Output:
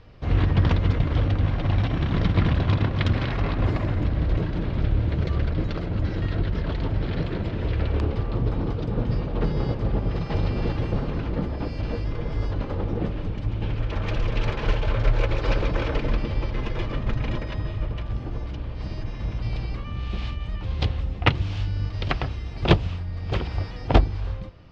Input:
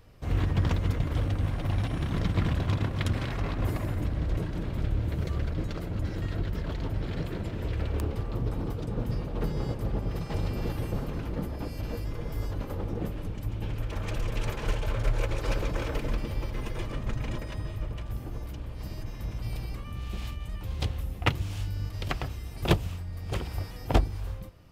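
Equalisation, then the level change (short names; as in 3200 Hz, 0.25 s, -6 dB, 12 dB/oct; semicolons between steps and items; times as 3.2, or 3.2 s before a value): LPF 4800 Hz 24 dB/oct; +6.0 dB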